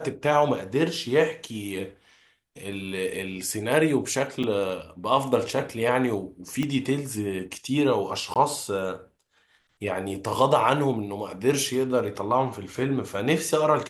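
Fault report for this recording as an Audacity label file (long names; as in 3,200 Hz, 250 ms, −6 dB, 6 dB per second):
4.430000	4.440000	drop-out 6.2 ms
6.630000	6.630000	click −15 dBFS
8.340000	8.360000	drop-out 17 ms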